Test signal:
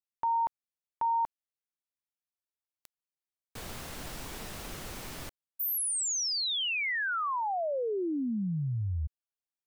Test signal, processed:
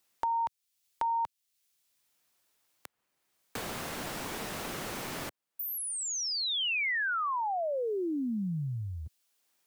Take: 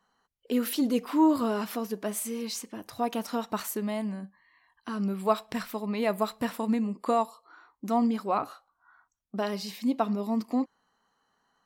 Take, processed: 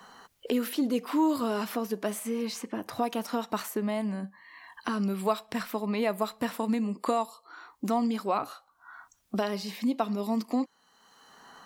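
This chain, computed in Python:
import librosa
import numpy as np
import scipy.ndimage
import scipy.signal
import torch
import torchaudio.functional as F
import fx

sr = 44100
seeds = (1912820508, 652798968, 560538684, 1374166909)

y = fx.low_shelf(x, sr, hz=82.0, db=-11.0)
y = fx.band_squash(y, sr, depth_pct=70)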